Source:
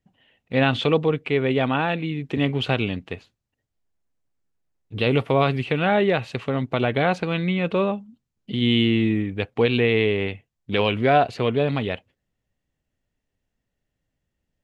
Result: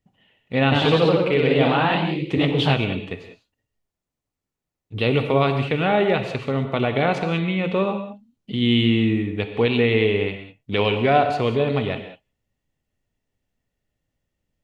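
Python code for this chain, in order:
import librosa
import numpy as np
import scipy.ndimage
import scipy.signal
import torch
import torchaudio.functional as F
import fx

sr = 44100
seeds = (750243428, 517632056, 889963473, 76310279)

y = fx.notch(x, sr, hz=1600.0, q=15.0)
y = fx.rev_gated(y, sr, seeds[0], gate_ms=220, shape='flat', drr_db=6.5)
y = fx.echo_pitch(y, sr, ms=97, semitones=1, count=3, db_per_echo=-3.0, at=(0.62, 2.77))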